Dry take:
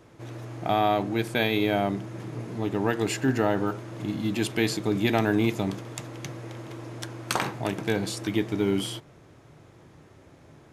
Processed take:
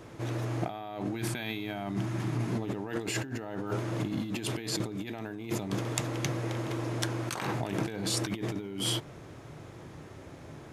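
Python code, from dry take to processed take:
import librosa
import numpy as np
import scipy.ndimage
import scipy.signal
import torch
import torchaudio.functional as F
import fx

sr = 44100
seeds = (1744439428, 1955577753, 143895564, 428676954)

y = fx.peak_eq(x, sr, hz=490.0, db=-12.0, octaves=0.47, at=(1.15, 2.53))
y = fx.over_compress(y, sr, threshold_db=-34.0, ratio=-1.0)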